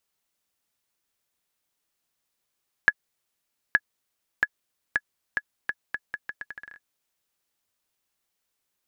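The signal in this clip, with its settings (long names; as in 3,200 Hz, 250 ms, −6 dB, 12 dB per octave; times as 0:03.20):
bouncing ball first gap 0.87 s, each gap 0.78, 1,690 Hz, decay 47 ms −4.5 dBFS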